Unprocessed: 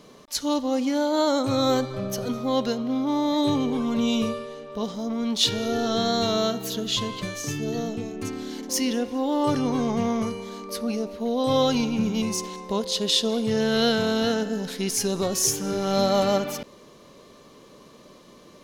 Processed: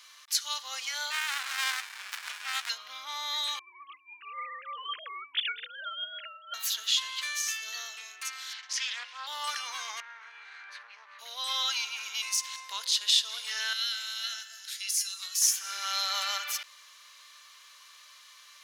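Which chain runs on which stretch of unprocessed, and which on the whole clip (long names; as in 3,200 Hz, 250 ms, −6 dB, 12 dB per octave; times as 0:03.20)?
0:01.10–0:02.69: meter weighting curve D + steady tone 2,700 Hz −32 dBFS + windowed peak hold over 65 samples
0:03.59–0:06.54: three sine waves on the formant tracks + compressor whose output falls as the input rises −30 dBFS, ratio −0.5
0:08.53–0:09.27: band-pass filter 650–3,900 Hz + highs frequency-modulated by the lows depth 0.19 ms
0:10.00–0:11.19: lower of the sound and its delayed copy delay 0.48 ms + low-pass filter 2,100 Hz + downward compressor 3 to 1, threshold −35 dBFS
0:13.73–0:15.42: tilt shelving filter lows −9 dB, about 1,300 Hz + tuned comb filter 680 Hz, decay 0.31 s, mix 80%
whole clip: high-pass filter 1,400 Hz 24 dB per octave; downward compressor 1.5 to 1, threshold −35 dBFS; level +4.5 dB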